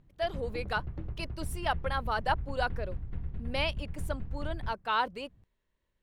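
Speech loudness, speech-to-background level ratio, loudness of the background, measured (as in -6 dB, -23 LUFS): -34.5 LUFS, 6.5 dB, -41.0 LUFS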